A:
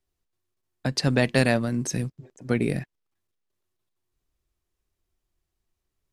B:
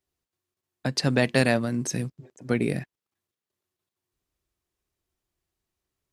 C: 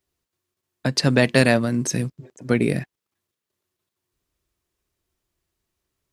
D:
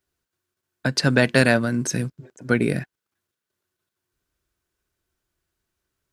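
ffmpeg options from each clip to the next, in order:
-af "highpass=f=94:p=1"
-af "bandreject=f=770:w=13,volume=1.78"
-af "equalizer=f=1500:t=o:w=0.21:g=10,volume=0.891"

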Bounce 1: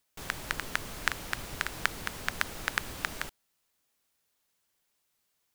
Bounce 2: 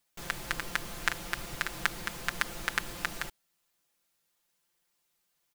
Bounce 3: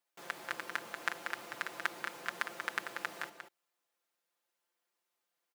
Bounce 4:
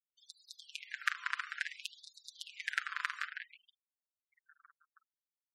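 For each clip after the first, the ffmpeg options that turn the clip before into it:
-af "aecho=1:1:5.8:0.65,volume=0.841"
-filter_complex "[0:a]highpass=380,highshelf=f=2300:g=-9.5,asplit=2[s0][s1];[s1]adelay=186.6,volume=0.501,highshelf=f=4000:g=-4.2[s2];[s0][s2]amix=inputs=2:normalize=0,volume=0.794"
-filter_complex "[0:a]asplit=9[s0][s1][s2][s3][s4][s5][s6][s7][s8];[s1]adelay=320,afreqshift=-35,volume=0.355[s9];[s2]adelay=640,afreqshift=-70,volume=0.224[s10];[s3]adelay=960,afreqshift=-105,volume=0.141[s11];[s4]adelay=1280,afreqshift=-140,volume=0.0891[s12];[s5]adelay=1600,afreqshift=-175,volume=0.0556[s13];[s6]adelay=1920,afreqshift=-210,volume=0.0351[s14];[s7]adelay=2240,afreqshift=-245,volume=0.0221[s15];[s8]adelay=2560,afreqshift=-280,volume=0.014[s16];[s0][s9][s10][s11][s12][s13][s14][s15][s16]amix=inputs=9:normalize=0,afftfilt=real='re*gte(hypot(re,im),0.00316)':imag='im*gte(hypot(re,im),0.00316)':win_size=1024:overlap=0.75,afftfilt=real='re*gte(b*sr/1024,970*pow(3700/970,0.5+0.5*sin(2*PI*0.57*pts/sr)))':imag='im*gte(b*sr/1024,970*pow(3700/970,0.5+0.5*sin(2*PI*0.57*pts/sr)))':win_size=1024:overlap=0.75,volume=1.33"

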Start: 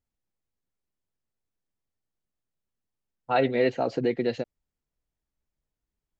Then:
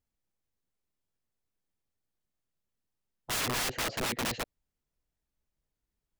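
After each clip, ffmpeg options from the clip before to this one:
-af "aeval=exprs='(mod(21.1*val(0)+1,2)-1)/21.1':c=same"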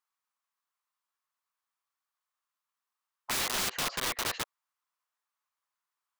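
-af "highpass=f=1100:t=q:w=4.2,aeval=exprs='(mod(18.8*val(0)+1,2)-1)/18.8':c=same"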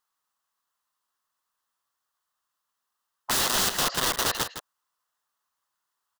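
-af "equalizer=f=2300:t=o:w=0.26:g=-11,aecho=1:1:161:0.316,volume=2.24"

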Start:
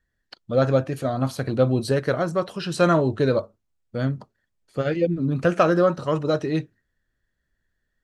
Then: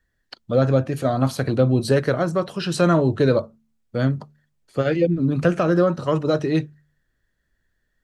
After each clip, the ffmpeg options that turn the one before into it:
-filter_complex "[0:a]bandreject=f=74.4:t=h:w=4,bandreject=f=148.8:t=h:w=4,bandreject=f=223.2:t=h:w=4,acrossover=split=340[s0][s1];[s1]alimiter=limit=0.158:level=0:latency=1:release=319[s2];[s0][s2]amix=inputs=2:normalize=0,volume=1.58"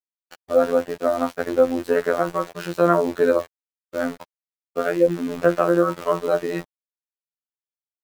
-filter_complex "[0:a]acrossover=split=360 2100:gain=0.158 1 0.158[s0][s1][s2];[s0][s1][s2]amix=inputs=3:normalize=0,aeval=exprs='val(0)*gte(abs(val(0)),0.0158)':c=same,afftfilt=real='hypot(re,im)*cos(PI*b)':imag='0':win_size=2048:overlap=0.75,volume=2.11"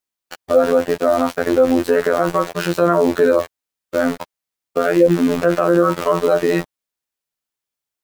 -af "alimiter=level_in=3.76:limit=0.891:release=50:level=0:latency=1,volume=0.891"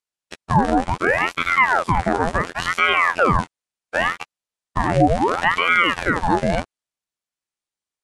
-af "aresample=22050,aresample=44100,aeval=exprs='val(0)*sin(2*PI*1000*n/s+1000*0.8/0.7*sin(2*PI*0.7*n/s))':c=same"

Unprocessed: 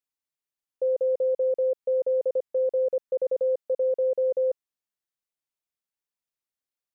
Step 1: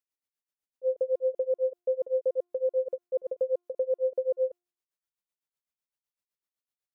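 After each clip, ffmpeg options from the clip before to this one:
-af "tremolo=f=7.9:d=0.95,bandreject=f=352.3:t=h:w=4,bandreject=f=704.6:t=h:w=4,bandreject=f=1056.9:t=h:w=4,bandreject=f=1409.2:t=h:w=4,bandreject=f=1761.5:t=h:w=4,bandreject=f=2113.8:t=h:w=4,bandreject=f=2466.1:t=h:w=4,bandreject=f=2818.4:t=h:w=4,bandreject=f=3170.7:t=h:w=4,bandreject=f=3523:t=h:w=4,bandreject=f=3875.3:t=h:w=4,bandreject=f=4227.6:t=h:w=4,bandreject=f=4579.9:t=h:w=4,bandreject=f=4932.2:t=h:w=4,bandreject=f=5284.5:t=h:w=4,bandreject=f=5636.8:t=h:w=4,bandreject=f=5989.1:t=h:w=4,bandreject=f=6341.4:t=h:w=4,bandreject=f=6693.7:t=h:w=4,bandreject=f=7046:t=h:w=4,bandreject=f=7398.3:t=h:w=4,bandreject=f=7750.6:t=h:w=4,bandreject=f=8102.9:t=h:w=4,bandreject=f=8455.2:t=h:w=4,bandreject=f=8807.5:t=h:w=4,bandreject=f=9159.8:t=h:w=4,bandreject=f=9512.1:t=h:w=4,bandreject=f=9864.4:t=h:w=4,bandreject=f=10216.7:t=h:w=4"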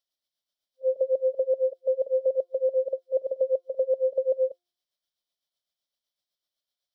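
-af "superequalizer=8b=2.51:13b=3.98:14b=3.16"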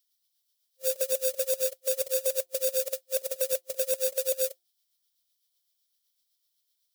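-af "acrusher=bits=4:mode=log:mix=0:aa=0.000001,crystalizer=i=8.5:c=0,volume=0.422"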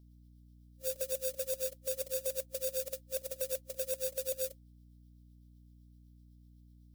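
-af "aeval=exprs='val(0)+0.00355*(sin(2*PI*60*n/s)+sin(2*PI*2*60*n/s)/2+sin(2*PI*3*60*n/s)/3+sin(2*PI*4*60*n/s)/4+sin(2*PI*5*60*n/s)/5)':c=same,volume=0.398"

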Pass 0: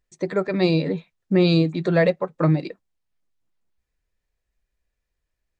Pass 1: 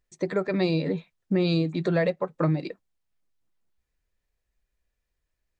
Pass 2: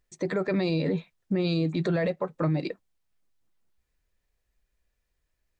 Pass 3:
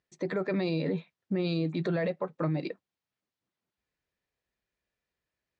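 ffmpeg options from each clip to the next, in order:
-af "acompressor=threshold=0.0891:ratio=2.5,volume=0.891"
-af "alimiter=limit=0.0841:level=0:latency=1:release=10,volume=1.33"
-af "highpass=120,lowpass=5100,volume=0.708"

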